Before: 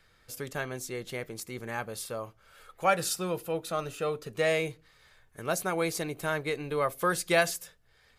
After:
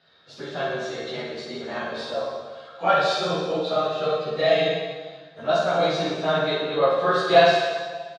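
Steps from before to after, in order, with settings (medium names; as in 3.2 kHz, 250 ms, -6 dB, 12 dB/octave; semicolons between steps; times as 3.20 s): phase randomisation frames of 50 ms; cabinet simulation 170–4800 Hz, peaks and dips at 670 Hz +9 dB, 2.2 kHz -5 dB, 3.8 kHz +10 dB; doubling 13 ms -4 dB; on a send: reverse bouncing-ball echo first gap 50 ms, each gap 1.15×, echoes 5; on the sum: plate-style reverb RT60 1.5 s, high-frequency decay 0.9×, DRR 1.5 dB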